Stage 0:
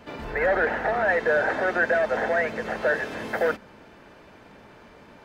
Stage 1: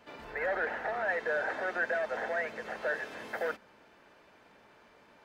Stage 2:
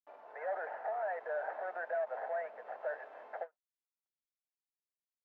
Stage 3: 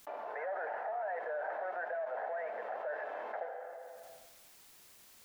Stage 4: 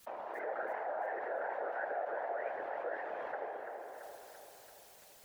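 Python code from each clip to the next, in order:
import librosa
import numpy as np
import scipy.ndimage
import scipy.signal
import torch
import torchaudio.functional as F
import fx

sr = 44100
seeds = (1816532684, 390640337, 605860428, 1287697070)

y1 = fx.low_shelf(x, sr, hz=300.0, db=-10.5)
y1 = y1 * 10.0 ** (-8.0 / 20.0)
y2 = fx.delta_hold(y1, sr, step_db=-46.5)
y2 = fx.ladder_bandpass(y2, sr, hz=790.0, resonance_pct=50)
y2 = fx.end_taper(y2, sr, db_per_s=500.0)
y2 = y2 * 10.0 ** (4.0 / 20.0)
y3 = fx.rev_plate(y2, sr, seeds[0], rt60_s=1.0, hf_ratio=0.9, predelay_ms=0, drr_db=11.0)
y3 = fx.env_flatten(y3, sr, amount_pct=70)
y3 = y3 * 10.0 ** (-3.5 / 20.0)
y4 = fx.vibrato(y3, sr, rate_hz=4.1, depth_cents=82.0)
y4 = fx.whisperise(y4, sr, seeds[1])
y4 = fx.echo_feedback(y4, sr, ms=337, feedback_pct=58, wet_db=-8)
y4 = y4 * 10.0 ** (-1.0 / 20.0)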